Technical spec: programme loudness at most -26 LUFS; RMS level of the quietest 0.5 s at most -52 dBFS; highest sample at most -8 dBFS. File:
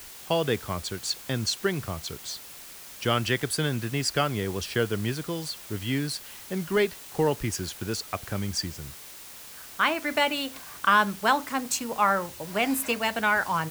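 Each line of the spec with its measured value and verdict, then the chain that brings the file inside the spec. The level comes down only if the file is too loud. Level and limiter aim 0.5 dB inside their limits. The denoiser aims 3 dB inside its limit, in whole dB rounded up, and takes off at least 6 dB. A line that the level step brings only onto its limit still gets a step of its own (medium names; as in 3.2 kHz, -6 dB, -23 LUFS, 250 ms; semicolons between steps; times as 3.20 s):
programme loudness -27.5 LUFS: pass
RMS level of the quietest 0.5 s -44 dBFS: fail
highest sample -7.0 dBFS: fail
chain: noise reduction 11 dB, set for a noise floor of -44 dBFS; peak limiter -8.5 dBFS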